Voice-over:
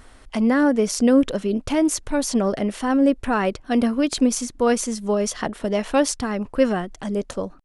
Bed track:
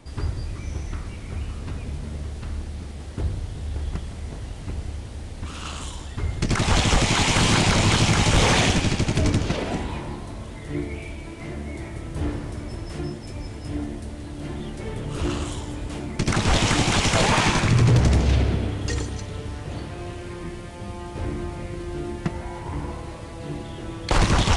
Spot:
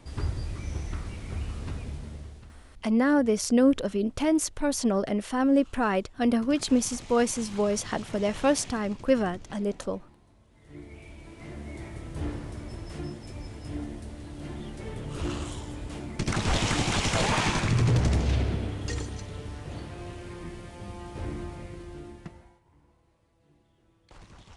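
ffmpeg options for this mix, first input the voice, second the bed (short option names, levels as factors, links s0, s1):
-filter_complex "[0:a]adelay=2500,volume=0.596[s0];[1:a]volume=6.31,afade=t=out:st=1.67:d=0.94:silence=0.0794328,afade=t=in:st=10.5:d=1.32:silence=0.112202,afade=t=out:st=21.37:d=1.23:silence=0.0501187[s1];[s0][s1]amix=inputs=2:normalize=0"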